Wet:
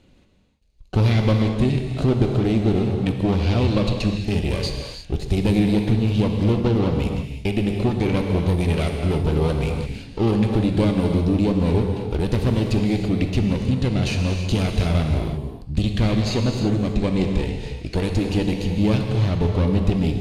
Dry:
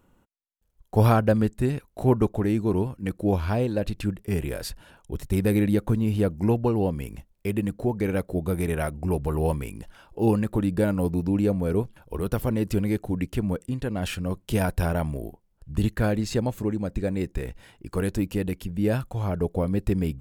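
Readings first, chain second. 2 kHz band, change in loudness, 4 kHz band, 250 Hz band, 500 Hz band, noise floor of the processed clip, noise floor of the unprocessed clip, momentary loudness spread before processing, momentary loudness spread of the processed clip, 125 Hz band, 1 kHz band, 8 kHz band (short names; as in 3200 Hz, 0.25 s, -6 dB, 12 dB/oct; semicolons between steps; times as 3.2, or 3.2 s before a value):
+4.0 dB, +4.5 dB, +11.0 dB, +5.0 dB, +2.5 dB, -40 dBFS, -66 dBFS, 10 LU, 6 LU, +6.5 dB, +1.5 dB, +2.0 dB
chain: minimum comb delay 0.46 ms; resonant high shelf 2400 Hz +12.5 dB, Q 1.5; compressor 3:1, threshold -25 dBFS, peak gain reduction 9 dB; tape spacing loss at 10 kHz 23 dB; non-linear reverb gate 0.37 s flat, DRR 2.5 dB; gain +8.5 dB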